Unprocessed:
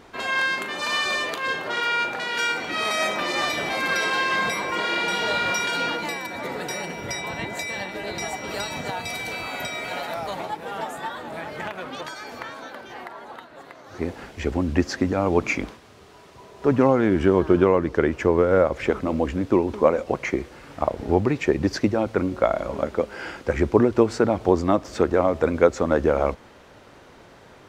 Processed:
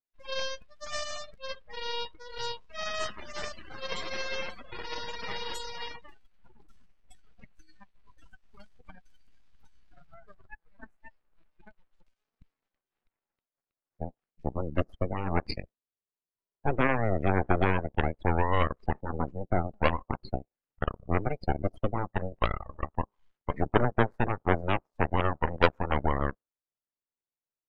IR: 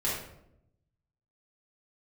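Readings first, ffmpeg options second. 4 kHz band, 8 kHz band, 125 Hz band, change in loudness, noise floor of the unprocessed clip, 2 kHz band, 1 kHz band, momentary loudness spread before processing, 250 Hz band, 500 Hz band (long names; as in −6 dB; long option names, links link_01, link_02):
−10.0 dB, below −10 dB, −2.5 dB, −8.5 dB, −49 dBFS, −10.5 dB, −6.0 dB, 13 LU, −11.5 dB, −11.5 dB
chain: -af "aeval=exprs='0.794*(cos(1*acos(clip(val(0)/0.794,-1,1)))-cos(1*PI/2))+0.251*(cos(3*acos(clip(val(0)/0.794,-1,1)))-cos(3*PI/2))+0.0891*(cos(8*acos(clip(val(0)/0.794,-1,1)))-cos(8*PI/2))':channel_layout=same,afftdn=noise_reduction=31:noise_floor=-33,volume=-1.5dB"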